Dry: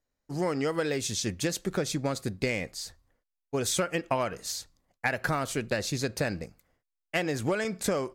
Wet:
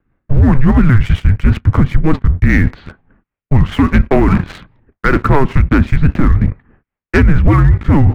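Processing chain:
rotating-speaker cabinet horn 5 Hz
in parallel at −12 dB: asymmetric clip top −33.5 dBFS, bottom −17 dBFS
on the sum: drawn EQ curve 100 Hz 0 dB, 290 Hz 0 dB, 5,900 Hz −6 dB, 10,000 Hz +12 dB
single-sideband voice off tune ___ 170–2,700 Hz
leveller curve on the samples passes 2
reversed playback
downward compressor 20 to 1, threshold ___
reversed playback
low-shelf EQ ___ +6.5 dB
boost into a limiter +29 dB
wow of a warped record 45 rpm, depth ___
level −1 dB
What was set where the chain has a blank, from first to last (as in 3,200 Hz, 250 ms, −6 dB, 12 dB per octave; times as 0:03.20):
−280 Hz, −36 dBFS, 180 Hz, 250 cents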